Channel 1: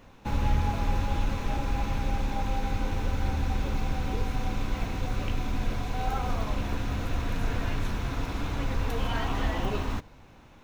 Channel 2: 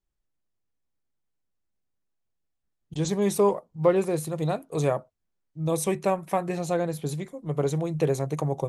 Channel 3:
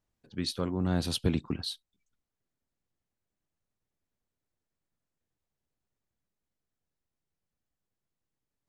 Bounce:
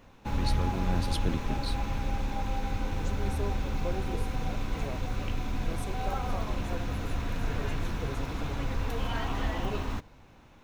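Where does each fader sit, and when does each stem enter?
-2.5 dB, -16.5 dB, -4.5 dB; 0.00 s, 0.00 s, 0.00 s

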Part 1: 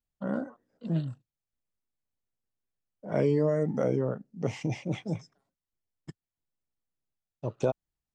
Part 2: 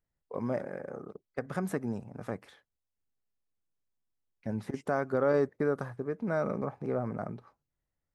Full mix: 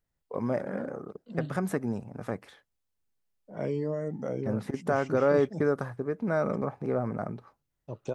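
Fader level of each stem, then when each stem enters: -6.0 dB, +3.0 dB; 0.45 s, 0.00 s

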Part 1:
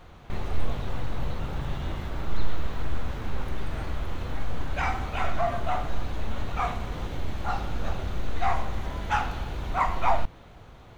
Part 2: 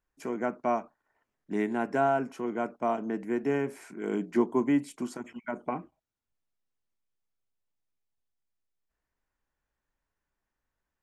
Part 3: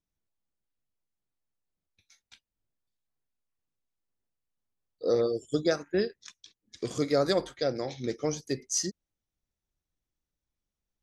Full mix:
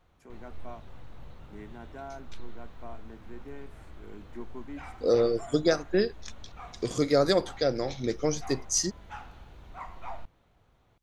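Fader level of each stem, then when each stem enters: -17.0 dB, -17.0 dB, +2.5 dB; 0.00 s, 0.00 s, 0.00 s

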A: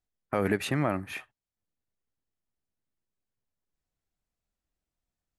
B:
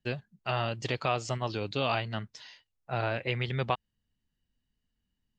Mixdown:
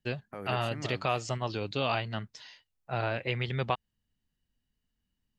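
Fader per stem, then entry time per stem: -14.0 dB, -0.5 dB; 0.00 s, 0.00 s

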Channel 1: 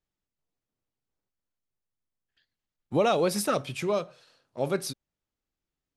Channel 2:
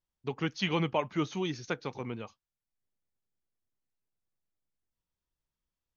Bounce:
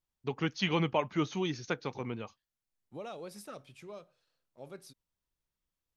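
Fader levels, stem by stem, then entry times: -19.5 dB, 0.0 dB; 0.00 s, 0.00 s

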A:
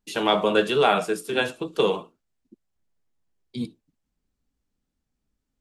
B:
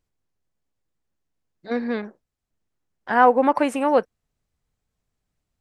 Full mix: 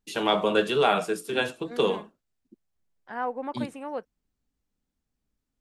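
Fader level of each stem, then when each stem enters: -2.5 dB, -15.5 dB; 0.00 s, 0.00 s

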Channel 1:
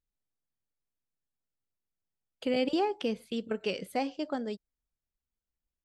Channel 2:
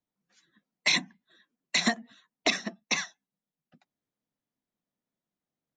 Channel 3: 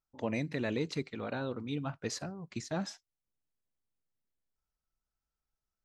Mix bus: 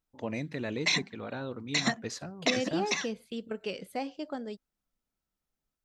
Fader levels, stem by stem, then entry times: -3.5 dB, -3.0 dB, -1.0 dB; 0.00 s, 0.00 s, 0.00 s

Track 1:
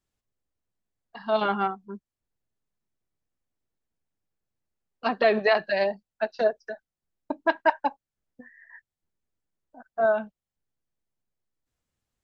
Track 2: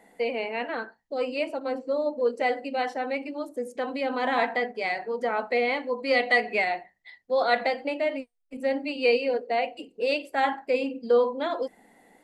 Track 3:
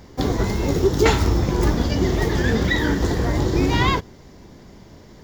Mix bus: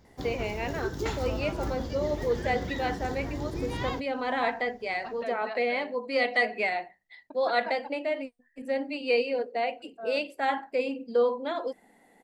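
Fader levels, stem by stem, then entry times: -17.5 dB, -3.0 dB, -15.0 dB; 0.00 s, 0.05 s, 0.00 s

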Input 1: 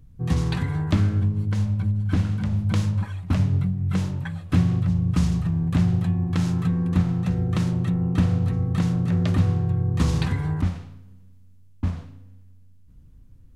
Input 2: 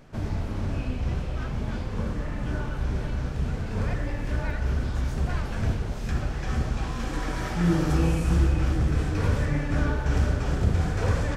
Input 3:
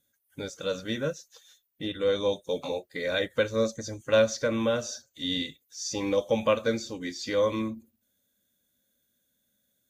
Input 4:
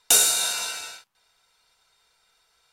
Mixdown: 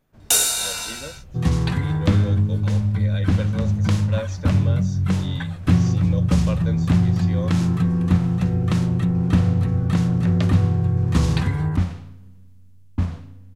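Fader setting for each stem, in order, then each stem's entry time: +3.0 dB, -17.5 dB, -8.0 dB, 0.0 dB; 1.15 s, 0.00 s, 0.00 s, 0.20 s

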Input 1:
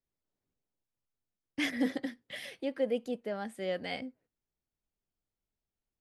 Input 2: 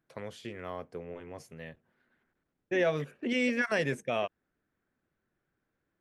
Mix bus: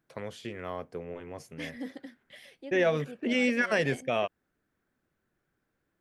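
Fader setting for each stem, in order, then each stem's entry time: -8.5 dB, +2.5 dB; 0.00 s, 0.00 s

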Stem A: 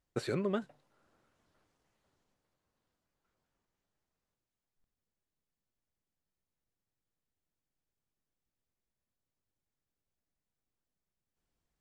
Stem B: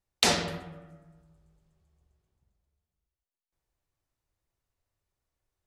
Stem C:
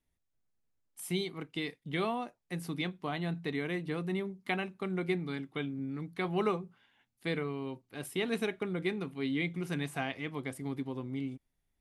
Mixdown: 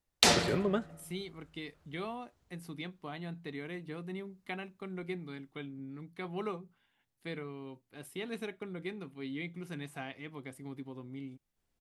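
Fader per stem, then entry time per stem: +2.0 dB, -0.5 dB, -7.0 dB; 0.20 s, 0.00 s, 0.00 s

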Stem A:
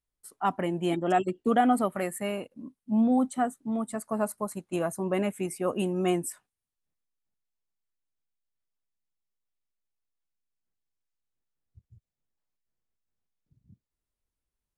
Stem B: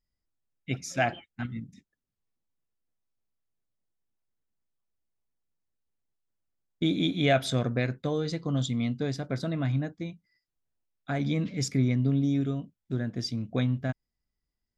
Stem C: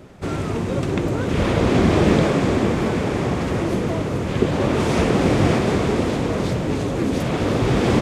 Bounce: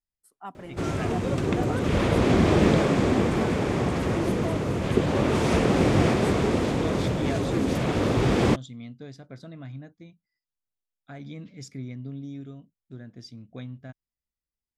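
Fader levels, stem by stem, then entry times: -12.5 dB, -11.5 dB, -3.5 dB; 0.00 s, 0.00 s, 0.55 s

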